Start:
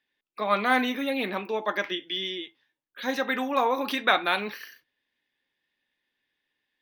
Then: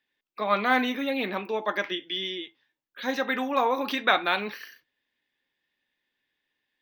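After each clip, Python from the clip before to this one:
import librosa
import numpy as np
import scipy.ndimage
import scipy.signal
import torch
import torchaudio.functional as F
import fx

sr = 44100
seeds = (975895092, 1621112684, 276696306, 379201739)

y = fx.peak_eq(x, sr, hz=10000.0, db=-11.5, octaves=0.45)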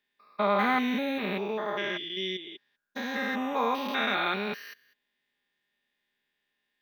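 y = fx.spec_steps(x, sr, hold_ms=200)
y = y + 0.54 * np.pad(y, (int(4.9 * sr / 1000.0), 0))[:len(y)]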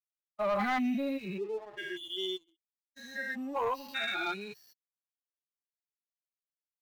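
y = fx.bin_expand(x, sr, power=3.0)
y = fx.leveller(y, sr, passes=2)
y = y * librosa.db_to_amplitude(-5.0)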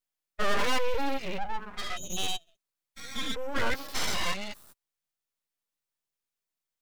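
y = np.abs(x)
y = y * librosa.db_to_amplitude(7.0)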